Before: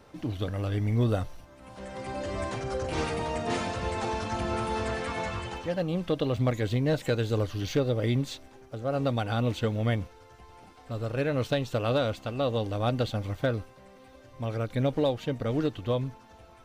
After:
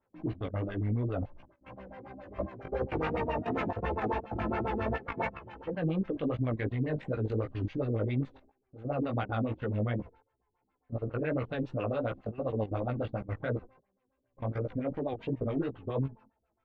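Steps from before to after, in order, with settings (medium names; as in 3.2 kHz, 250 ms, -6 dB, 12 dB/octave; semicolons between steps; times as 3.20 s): gate with hold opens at -39 dBFS; level held to a coarse grid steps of 16 dB; LFO low-pass sine 7.3 Hz 230–2500 Hz; chorus 2.8 Hz, delay 15 ms, depth 4.4 ms; trim +2 dB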